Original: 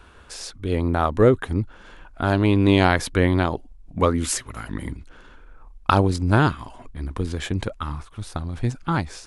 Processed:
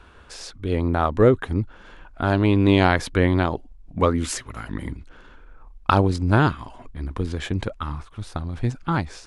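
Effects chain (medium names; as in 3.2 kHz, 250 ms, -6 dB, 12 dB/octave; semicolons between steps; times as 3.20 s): treble shelf 9.2 kHz -11.5 dB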